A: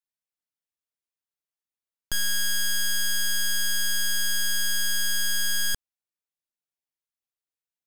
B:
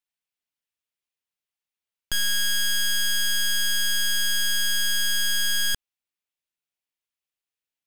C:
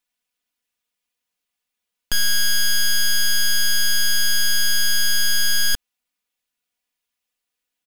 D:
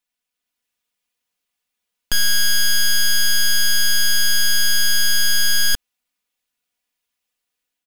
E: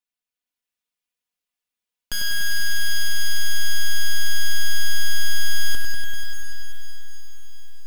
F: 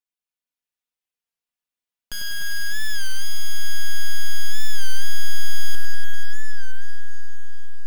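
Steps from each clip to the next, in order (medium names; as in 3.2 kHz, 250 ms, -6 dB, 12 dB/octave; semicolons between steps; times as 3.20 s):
peaking EQ 2.7 kHz +6.5 dB 1.1 oct
comb 4.1 ms, depth 82%; peak limiter -18.5 dBFS, peak gain reduction 3.5 dB; trim +6 dB
level rider gain up to 4 dB; trim -2 dB
echo that smears into a reverb 657 ms, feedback 42%, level -12 dB; bit-crushed delay 97 ms, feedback 80%, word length 8-bit, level -5 dB; trim -8 dB
on a send: bucket-brigade echo 303 ms, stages 4096, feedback 72%, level -7.5 dB; on the sum: warped record 33 1/3 rpm, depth 100 cents; trim -4.5 dB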